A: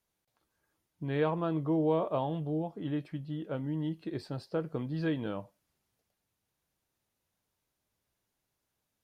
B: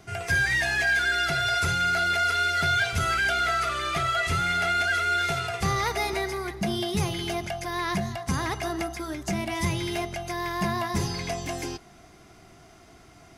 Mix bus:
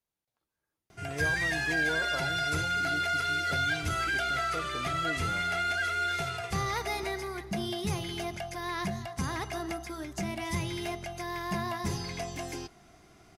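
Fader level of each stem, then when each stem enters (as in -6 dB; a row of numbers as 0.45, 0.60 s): -8.0, -5.5 dB; 0.00, 0.90 s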